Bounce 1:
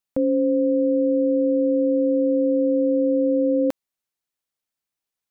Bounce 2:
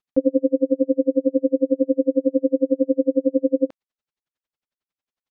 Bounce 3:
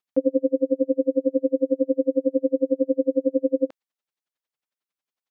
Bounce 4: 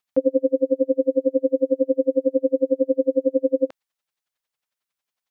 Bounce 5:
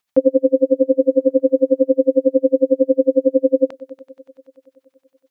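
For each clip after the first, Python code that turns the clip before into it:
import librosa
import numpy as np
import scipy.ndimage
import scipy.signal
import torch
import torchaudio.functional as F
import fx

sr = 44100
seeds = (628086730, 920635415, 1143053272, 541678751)

y1 = fx.rider(x, sr, range_db=10, speed_s=0.5)
y1 = fx.air_absorb(y1, sr, metres=130.0)
y1 = y1 * 10.0 ** (-39 * (0.5 - 0.5 * np.cos(2.0 * np.pi * 11.0 * np.arange(len(y1)) / sr)) / 20.0)
y1 = y1 * 10.0 ** (7.0 / 20.0)
y2 = fx.highpass(y1, sr, hz=330.0, slope=6)
y3 = fx.peak_eq(y2, sr, hz=300.0, db=-6.5, octaves=1.4)
y3 = y3 * 10.0 ** (5.5 / 20.0)
y4 = fx.echo_heads(y3, sr, ms=95, heads='all three', feedback_pct=68, wet_db=-20.5)
y4 = y4 * 10.0 ** (5.5 / 20.0)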